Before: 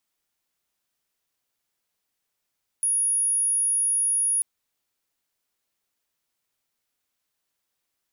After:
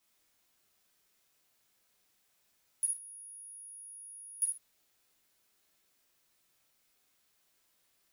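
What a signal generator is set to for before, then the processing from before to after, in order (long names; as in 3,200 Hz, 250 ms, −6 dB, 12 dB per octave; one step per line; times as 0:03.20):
tone sine 10,400 Hz −20 dBFS 1.59 s
brickwall limiter −27.5 dBFS
reverb whose tail is shaped and stops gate 170 ms falling, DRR −5 dB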